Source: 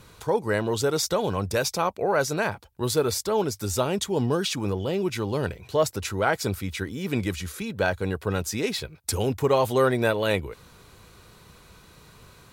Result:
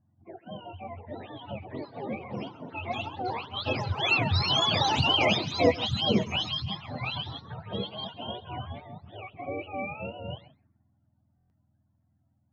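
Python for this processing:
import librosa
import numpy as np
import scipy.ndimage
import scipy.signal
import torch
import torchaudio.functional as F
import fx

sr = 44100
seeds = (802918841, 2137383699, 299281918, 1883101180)

p1 = fx.octave_mirror(x, sr, pivot_hz=560.0)
p2 = fx.doppler_pass(p1, sr, speed_mps=10, closest_m=6.6, pass_at_s=5.22)
p3 = scipy.signal.sosfilt(scipy.signal.butter(2, 3600.0, 'lowpass', fs=sr, output='sos'), p2)
p4 = fx.peak_eq(p3, sr, hz=2700.0, db=14.5, octaves=2.2)
p5 = fx.env_phaser(p4, sr, low_hz=410.0, high_hz=1600.0, full_db=-35.5)
p6 = fx.echo_pitch(p5, sr, ms=766, semitones=4, count=3, db_per_echo=-6.0)
p7 = fx.env_lowpass(p6, sr, base_hz=470.0, full_db=-27.5)
p8 = p7 + fx.echo_single(p7, sr, ms=134, db=-19.0, dry=0)
p9 = fx.buffer_glitch(p8, sr, at_s=(11.36,), block=1024, repeats=5)
y = F.gain(torch.from_numpy(p9), 2.5).numpy()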